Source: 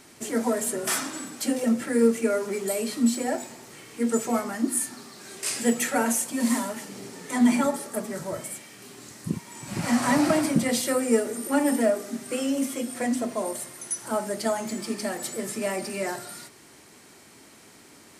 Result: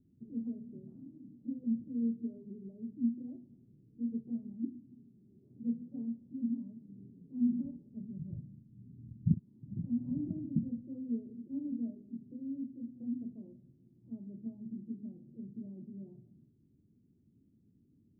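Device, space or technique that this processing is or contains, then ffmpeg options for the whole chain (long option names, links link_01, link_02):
the neighbour's flat through the wall: -filter_complex "[0:a]lowpass=frequency=240:width=0.5412,lowpass=frequency=240:width=1.3066,equalizer=frequency=100:width_type=o:width=0.9:gain=3,asettb=1/sr,asplit=3[link_01][link_02][link_03];[link_01]atrim=end=7.594[link_04];[link_02]atrim=start=7.59:end=9.34,asetpts=PTS-STARTPTS,afade=type=in:duration=0.004:curve=qsin,afade=type=out:start_time=1.746:duration=0.004:curve=qsin,asubboost=boost=11:cutoff=180[link_05];[link_03]atrim=start=9.336[link_06];[link_04][link_05]acrossfade=duration=0.004:curve1=hsin:curve2=qsin[link_07];[link_07][link_06]acrossfade=duration=0.004:curve1=qsin:curve2=hsin,volume=-7.5dB"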